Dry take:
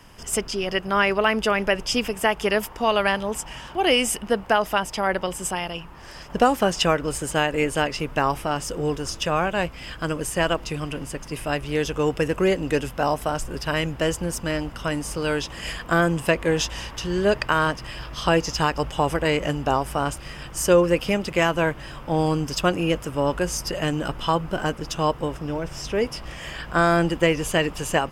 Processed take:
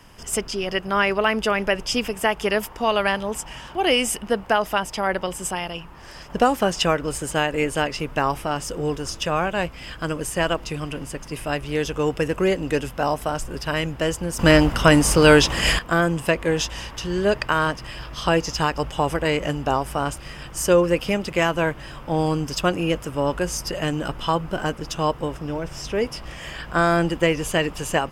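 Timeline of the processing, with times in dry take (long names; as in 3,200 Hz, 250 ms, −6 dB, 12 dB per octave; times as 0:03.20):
0:14.39–0:15.79: clip gain +12 dB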